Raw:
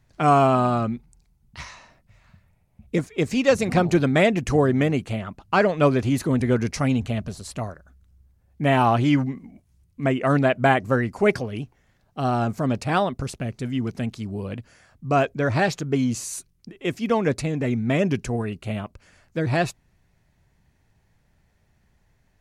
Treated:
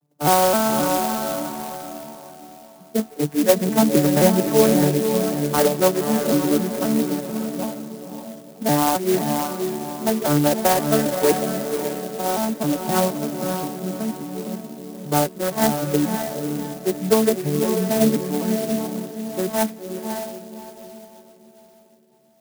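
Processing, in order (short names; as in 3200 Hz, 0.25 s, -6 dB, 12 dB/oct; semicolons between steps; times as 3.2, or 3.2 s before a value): arpeggiated vocoder major triad, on D3, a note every 0.263 s; HPF 290 Hz 12 dB/oct; on a send: diffused feedback echo 0.549 s, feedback 41%, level -5 dB; on the sum: low-pass opened by the level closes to 770 Hz, open at -19 dBFS; clock jitter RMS 0.094 ms; gain +6 dB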